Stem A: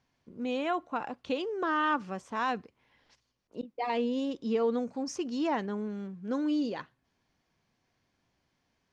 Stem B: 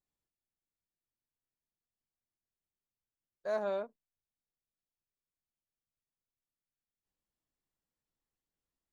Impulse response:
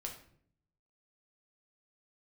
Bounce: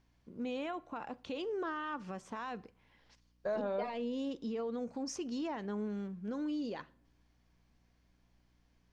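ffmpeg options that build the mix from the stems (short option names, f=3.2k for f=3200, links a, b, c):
-filter_complex "[0:a]alimiter=level_in=6dB:limit=-24dB:level=0:latency=1:release=133,volume=-6dB,aeval=exprs='val(0)+0.000355*(sin(2*PI*60*n/s)+sin(2*PI*2*60*n/s)/2+sin(2*PI*3*60*n/s)/3+sin(2*PI*4*60*n/s)/4+sin(2*PI*5*60*n/s)/5)':c=same,volume=-2.5dB,asplit=2[a][b];[b]volume=-14dB[c];[1:a]aemphasis=mode=reproduction:type=bsi,acompressor=threshold=-37dB:ratio=6,volume=2.5dB,asplit=2[d][e];[e]volume=-8.5dB[f];[2:a]atrim=start_sample=2205[g];[c][f]amix=inputs=2:normalize=0[h];[h][g]afir=irnorm=-1:irlink=0[i];[a][d][i]amix=inputs=3:normalize=0"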